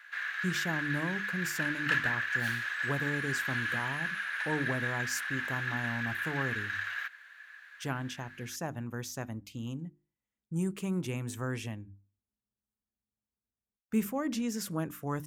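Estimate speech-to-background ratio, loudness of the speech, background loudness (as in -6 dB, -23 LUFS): -4.0 dB, -37.0 LUFS, -33.0 LUFS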